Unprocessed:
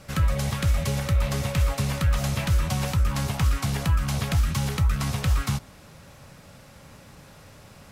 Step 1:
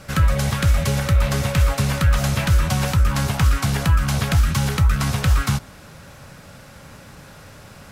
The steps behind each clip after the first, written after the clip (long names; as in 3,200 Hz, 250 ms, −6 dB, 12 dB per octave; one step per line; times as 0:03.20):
parametric band 1,500 Hz +4.5 dB 0.36 octaves
level +5.5 dB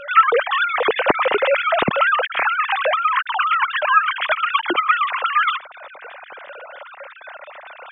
three sine waves on the formant tracks
level −1 dB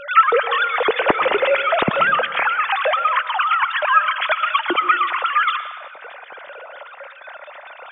convolution reverb RT60 1.1 s, pre-delay 102 ms, DRR 12 dB